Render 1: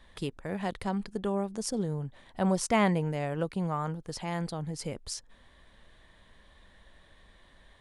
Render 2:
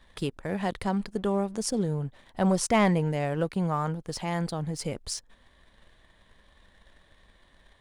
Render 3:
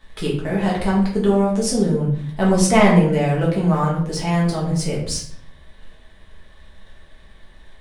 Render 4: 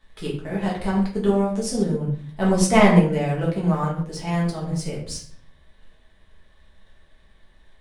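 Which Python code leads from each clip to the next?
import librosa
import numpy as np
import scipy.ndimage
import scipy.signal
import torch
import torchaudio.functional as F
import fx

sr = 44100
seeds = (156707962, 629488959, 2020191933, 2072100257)

y1 = fx.leveller(x, sr, passes=1)
y2 = fx.room_shoebox(y1, sr, seeds[0], volume_m3=89.0, walls='mixed', distance_m=1.5)
y2 = y2 * librosa.db_to_amplitude(2.5)
y3 = fx.upward_expand(y2, sr, threshold_db=-26.0, expansion=1.5)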